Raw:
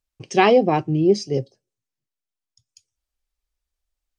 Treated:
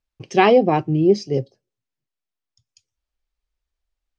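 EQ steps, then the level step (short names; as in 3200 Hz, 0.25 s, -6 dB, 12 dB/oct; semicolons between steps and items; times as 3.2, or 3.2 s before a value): air absorption 90 m; +1.5 dB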